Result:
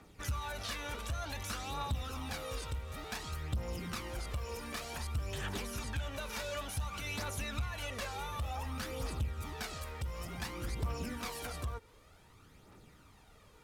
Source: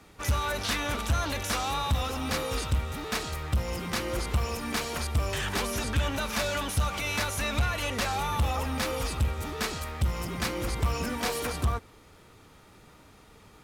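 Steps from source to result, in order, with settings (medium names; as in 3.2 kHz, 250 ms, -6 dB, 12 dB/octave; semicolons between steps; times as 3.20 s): compression 2.5:1, threshold -32 dBFS, peak gain reduction 7 dB; phaser 0.55 Hz, delay 2.2 ms, feedback 46%; trim -7.5 dB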